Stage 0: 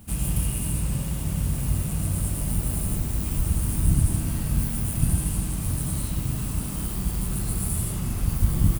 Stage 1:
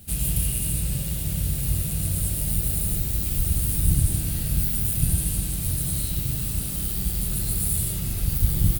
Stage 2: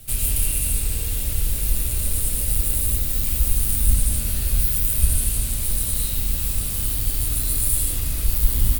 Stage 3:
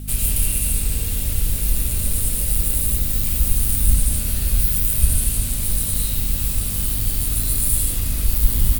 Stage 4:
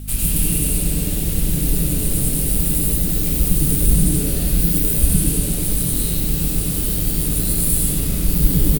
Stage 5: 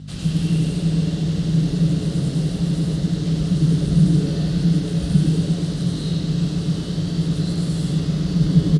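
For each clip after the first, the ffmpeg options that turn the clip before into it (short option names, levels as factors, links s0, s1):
-af "equalizer=f=250:t=o:w=0.67:g=-6,equalizer=f=1000:t=o:w=0.67:g=-11,equalizer=f=4000:t=o:w=0.67:g=7,equalizer=f=16000:t=o:w=0.67:g=11"
-af "afreqshift=-87,volume=1.58"
-af "aeval=exprs='val(0)+0.0251*(sin(2*PI*50*n/s)+sin(2*PI*2*50*n/s)/2+sin(2*PI*3*50*n/s)/3+sin(2*PI*4*50*n/s)/4+sin(2*PI*5*50*n/s)/5)':c=same,volume=1.19"
-filter_complex "[0:a]asplit=6[s0][s1][s2][s3][s4][s5];[s1]adelay=100,afreqshift=130,volume=0.501[s6];[s2]adelay=200,afreqshift=260,volume=0.216[s7];[s3]adelay=300,afreqshift=390,volume=0.0923[s8];[s4]adelay=400,afreqshift=520,volume=0.0398[s9];[s5]adelay=500,afreqshift=650,volume=0.0172[s10];[s0][s6][s7][s8][s9][s10]amix=inputs=6:normalize=0"
-af "highpass=110,equalizer=f=160:t=q:w=4:g=10,equalizer=f=230:t=q:w=4:g=-4,equalizer=f=2400:t=q:w=4:g=-10,lowpass=f=5400:w=0.5412,lowpass=f=5400:w=1.3066"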